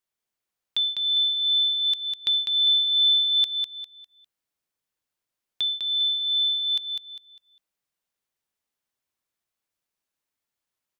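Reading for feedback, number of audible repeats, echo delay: 32%, 4, 0.201 s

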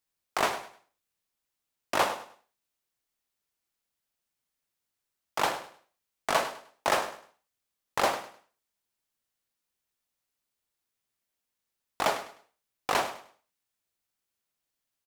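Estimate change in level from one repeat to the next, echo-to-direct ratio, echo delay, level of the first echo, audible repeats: -11.0 dB, -13.0 dB, 0.102 s, -13.5 dB, 2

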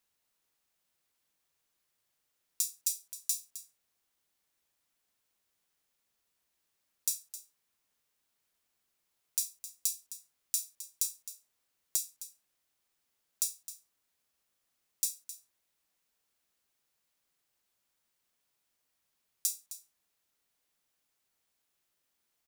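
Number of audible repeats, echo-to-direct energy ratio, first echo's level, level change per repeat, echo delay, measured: 1, -13.5 dB, -13.5 dB, no steady repeat, 0.262 s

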